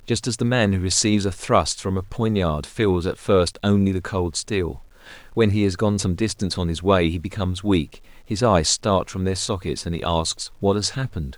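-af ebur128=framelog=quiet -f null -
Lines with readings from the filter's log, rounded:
Integrated loudness:
  I:         -21.7 LUFS
  Threshold: -31.9 LUFS
Loudness range:
  LRA:         1.6 LU
  Threshold: -42.0 LUFS
  LRA low:   -22.6 LUFS
  LRA high:  -21.0 LUFS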